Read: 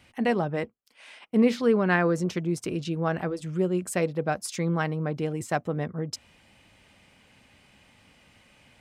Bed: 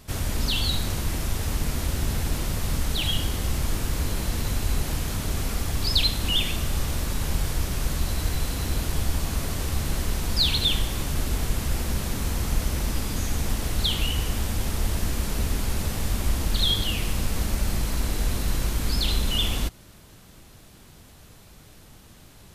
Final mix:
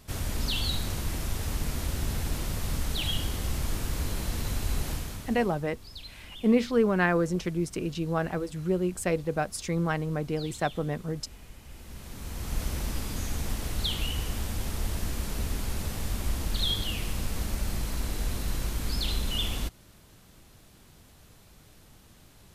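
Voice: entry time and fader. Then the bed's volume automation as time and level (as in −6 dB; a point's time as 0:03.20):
5.10 s, −1.5 dB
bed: 0:04.91 −4.5 dB
0:05.69 −22.5 dB
0:11.63 −22.5 dB
0:12.62 −5.5 dB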